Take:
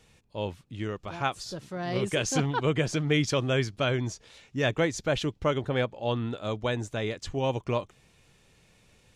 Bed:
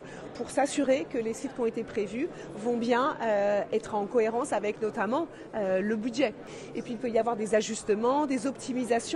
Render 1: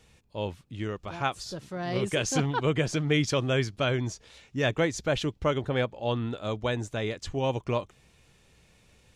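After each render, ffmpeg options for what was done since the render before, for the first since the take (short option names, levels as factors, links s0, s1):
-af "equalizer=f=63:t=o:w=0.32:g=7.5"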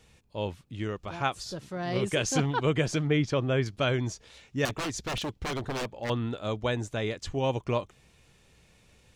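-filter_complex "[0:a]asettb=1/sr,asplit=3[s0][s1][s2];[s0]atrim=end=3.074[s3];[s1]atrim=start=3.07:end=3.66,asetpts=PTS-STARTPTS,afade=t=in:d=0.004:c=qsin,afade=t=out:st=0.586:d=0.004:c=qsin,lowpass=f=1900:p=1[s4];[s2]atrim=start=3.656[s5];[s3][s4]acrossfade=d=0.004:c1=hsin:c2=qsin[s6];[s6][s5]acrossfade=d=0.004:c1=qsin:c2=hsin,asettb=1/sr,asplit=3[s7][s8][s9];[s7]atrim=end=4.654[s10];[s8]atrim=start=4.65:end=6.1,asetpts=PTS-STARTPTS,afade=t=in:d=0.004:c=qsin,afade=t=out:st=1.446:d=0.004:c=qsin,aeval=exprs='0.0473*(abs(mod(val(0)/0.0473+3,4)-2)-1)':c=same[s11];[s9]atrim=start=6.096[s12];[s10][s11]acrossfade=d=0.004:c1=hsin:c2=qsin[s13];[s13][s12]acrossfade=d=0.004:c1=qsin:c2=hsin"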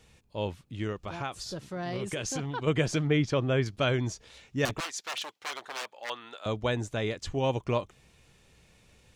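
-filter_complex "[0:a]asplit=3[s0][s1][s2];[s0]afade=t=out:st=0.92:d=0.02[s3];[s1]acompressor=threshold=0.0316:ratio=4:attack=3.2:release=140:knee=1:detection=peak,afade=t=in:st=0.92:d=0.02,afade=t=out:st=2.66:d=0.02[s4];[s2]afade=t=in:st=2.66:d=0.02[s5];[s3][s4][s5]amix=inputs=3:normalize=0,asettb=1/sr,asplit=3[s6][s7][s8];[s6]atrim=end=4.804[s9];[s7]atrim=start=4.8:end=6.46,asetpts=PTS-STARTPTS,afade=t=in:d=0.004:c=qsin,afade=t=out:st=1.656:d=0.004:c=qsin,highpass=870[s10];[s8]atrim=start=6.456[s11];[s9][s10]acrossfade=d=0.004:c1=hsin:c2=qsin[s12];[s12][s11]acrossfade=d=0.004:c1=qsin:c2=hsin"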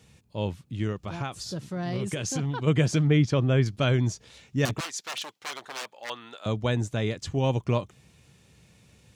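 -af "highpass=100,bass=f=250:g=9,treble=f=4000:g=3"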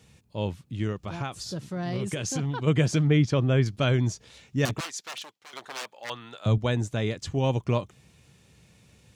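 -filter_complex "[0:a]asettb=1/sr,asplit=3[s0][s1][s2];[s0]atrim=end=6.044[s3];[s1]atrim=start=6.04:end=6.58,asetpts=PTS-STARTPTS,afade=t=in:d=0.004:c=qsin,afade=t=out:st=0.536:d=0.004:c=qsin,equalizer=f=130:t=o:w=0.77:g=11.5[s4];[s2]atrim=start=6.576[s5];[s3][s4]acrossfade=d=0.004:c1=hsin:c2=qsin[s6];[s6][s5]acrossfade=d=0.004:c1=qsin:c2=hsin,asplit=2[s7][s8];[s7]atrim=end=5.53,asetpts=PTS-STARTPTS,afade=t=out:st=4.6:d=0.93:c=qsin:silence=0.158489[s9];[s8]atrim=start=5.53,asetpts=PTS-STARTPTS,afade=t=in:d=0.004:c=hsin:silence=0.158489[s10];[s9][s10]concat=n=2:v=0:a=1"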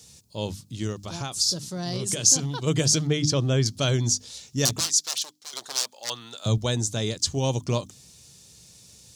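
-af "highshelf=f=3400:t=q:w=1.5:g=13.5,bandreject=f=50:t=h:w=6,bandreject=f=100:t=h:w=6,bandreject=f=150:t=h:w=6,bandreject=f=200:t=h:w=6,bandreject=f=250:t=h:w=6,bandreject=f=300:t=h:w=6"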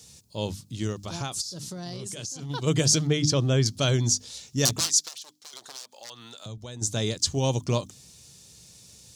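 -filter_complex "[0:a]asplit=3[s0][s1][s2];[s0]afade=t=out:st=1.4:d=0.02[s3];[s1]acompressor=threshold=0.0251:ratio=12:attack=3.2:release=140:knee=1:detection=peak,afade=t=in:st=1.4:d=0.02,afade=t=out:st=2.49:d=0.02[s4];[s2]afade=t=in:st=2.49:d=0.02[s5];[s3][s4][s5]amix=inputs=3:normalize=0,asplit=3[s6][s7][s8];[s6]afade=t=out:st=5.07:d=0.02[s9];[s7]acompressor=threshold=0.00891:ratio=3:attack=3.2:release=140:knee=1:detection=peak,afade=t=in:st=5.07:d=0.02,afade=t=out:st=6.81:d=0.02[s10];[s8]afade=t=in:st=6.81:d=0.02[s11];[s9][s10][s11]amix=inputs=3:normalize=0"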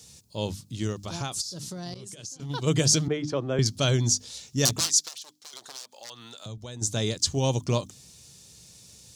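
-filter_complex "[0:a]asettb=1/sr,asplit=3[s0][s1][s2];[s0]atrim=end=1.944[s3];[s1]atrim=start=1.94:end=2.4,asetpts=PTS-STARTPTS,afade=t=in:d=0.004:c=qsin,afade=t=out:st=0.456:d=0.004:c=qsin,agate=range=0.0224:threshold=0.0251:ratio=3:release=100:detection=peak[s4];[s2]atrim=start=2.396[s5];[s3][s4]acrossfade=d=0.004:c1=hsin:c2=qsin[s6];[s6][s5]acrossfade=d=0.004:c1=qsin:c2=hsin,asettb=1/sr,asplit=3[s7][s8][s9];[s7]atrim=end=3.084[s10];[s8]atrim=start=3.08:end=3.59,asetpts=PTS-STARTPTS,afade=t=in:d=0.004:c=qsin,afade=t=out:st=0.506:d=0.004:c=qsin,acrossover=split=270 2200:gain=0.251 1 0.141[s11][s12][s13];[s11][s12][s13]amix=inputs=3:normalize=0[s14];[s9]atrim=start=3.586[s15];[s10][s14]acrossfade=d=0.004:c1=hsin:c2=qsin[s16];[s16][s15]acrossfade=d=0.004:c1=qsin:c2=hsin"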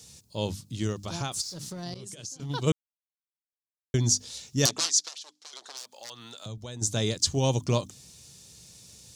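-filter_complex "[0:a]asettb=1/sr,asplit=3[s0][s1][s2];[s0]atrim=end=1.324[s3];[s1]atrim=start=1.32:end=1.83,asetpts=PTS-STARTPTS,afade=t=in:d=0.004:c=qsin,afade=t=out:st=0.506:d=0.004:c=qsin,aeval=exprs='sgn(val(0))*max(abs(val(0))-0.00266,0)':c=same[s4];[s2]atrim=start=1.826[s5];[s3][s4]acrossfade=d=0.004:c1=hsin:c2=qsin[s6];[s6][s5]acrossfade=d=0.004:c1=qsin:c2=hsin,asettb=1/sr,asplit=3[s7][s8][s9];[s7]atrim=end=4.664[s10];[s8]atrim=start=4.66:end=5.77,asetpts=PTS-STARTPTS,afade=t=in:d=0.004:c=qsin,afade=t=out:st=1.106:d=0.004:c=qsin,highpass=320,lowpass=7200[s11];[s9]atrim=start=5.766[s12];[s10][s11]acrossfade=d=0.004:c1=hsin:c2=qsin[s13];[s13][s12]acrossfade=d=0.004:c1=qsin:c2=hsin,asplit=3[s14][s15][s16];[s14]atrim=end=2.72,asetpts=PTS-STARTPTS,afade=t=out:st=2.716:d=0.004:c=hsin[s17];[s15]atrim=start=2.72:end=3.94,asetpts=PTS-STARTPTS,volume=0[s18];[s16]atrim=start=3.94,asetpts=PTS-STARTPTS,afade=t=in:d=0.004:c=hsin[s19];[s17][s18][s19]concat=n=3:v=0:a=1"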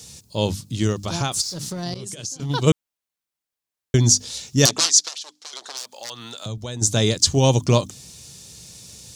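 -af "volume=2.66,alimiter=limit=0.794:level=0:latency=1"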